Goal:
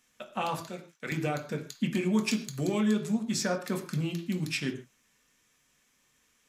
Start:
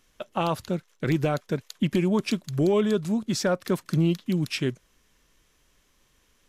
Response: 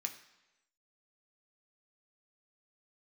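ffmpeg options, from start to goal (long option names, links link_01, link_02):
-filter_complex "[0:a]asettb=1/sr,asplit=3[link_01][link_02][link_03];[link_01]atrim=end=0.644[link_04];[link_02]atrim=start=0.64:end=1.12,asetpts=PTS-STARTPTS,afade=type=in:duration=0.004:curve=qsin,afade=type=out:start_time=0.476:duration=0.004:curve=qsin,highpass=frequency=480:poles=1[link_05];[link_03]atrim=start=1.116[link_06];[link_04][link_05]acrossfade=duration=0.004:curve1=hsin:curve2=qsin[link_07];[link_07][link_06]acrossfade=duration=0.004:curve1=qsin:curve2=hsin,asettb=1/sr,asplit=3[link_08][link_09][link_10];[link_08]atrim=end=2.134[link_11];[link_09]atrim=start=2.13:end=2.8,asetpts=PTS-STARTPTS,afade=type=in:duration=0.004:curve=qsin,afade=type=out:start_time=0.666:duration=0.004:curve=qsin,highshelf=frequency=4800:gain=5.5[link_12];[link_10]atrim=start=2.796[link_13];[link_11][link_12]acrossfade=duration=0.004:curve1=hsin:curve2=qsin[link_14];[link_14][link_13]acrossfade=duration=0.004:curve1=qsin:curve2=hsin[link_15];[1:a]atrim=start_sample=2205,afade=type=out:start_time=0.21:duration=0.01,atrim=end_sample=9702[link_16];[link_15][link_16]afir=irnorm=-1:irlink=0,volume=-1.5dB"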